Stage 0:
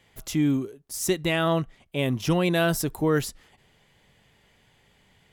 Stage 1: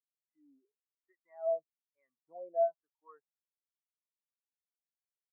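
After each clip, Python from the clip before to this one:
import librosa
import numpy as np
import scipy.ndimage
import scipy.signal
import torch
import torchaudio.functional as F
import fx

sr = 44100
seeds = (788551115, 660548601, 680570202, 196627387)

y = fx.high_shelf_res(x, sr, hz=2700.0, db=-9.5, q=3.0)
y = fx.wah_lfo(y, sr, hz=1.1, low_hz=590.0, high_hz=1300.0, q=3.4)
y = fx.spectral_expand(y, sr, expansion=2.5)
y = y * librosa.db_to_amplitude(-3.5)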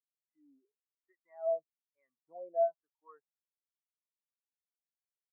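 y = x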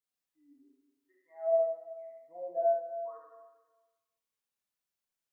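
y = fx.rev_schroeder(x, sr, rt60_s=1.3, comb_ms=31, drr_db=-4.0)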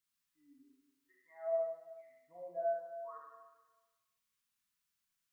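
y = fx.spec_box(x, sr, start_s=2.01, length_s=0.29, low_hz=410.0, high_hz=1300.0, gain_db=-7)
y = fx.band_shelf(y, sr, hz=500.0, db=-12.0, octaves=1.7)
y = y * librosa.db_to_amplitude(4.5)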